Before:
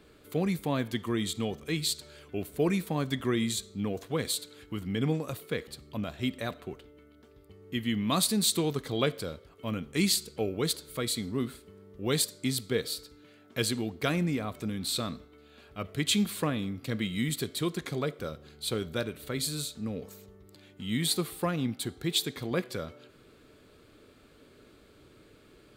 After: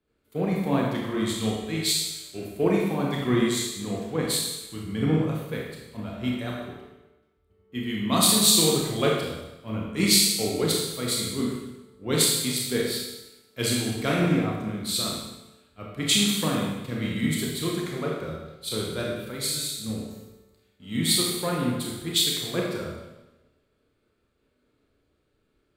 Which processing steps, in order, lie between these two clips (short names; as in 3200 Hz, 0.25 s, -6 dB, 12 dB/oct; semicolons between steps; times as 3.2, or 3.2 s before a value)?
Schroeder reverb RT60 1.5 s, combs from 25 ms, DRR -3 dB; three-band expander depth 70%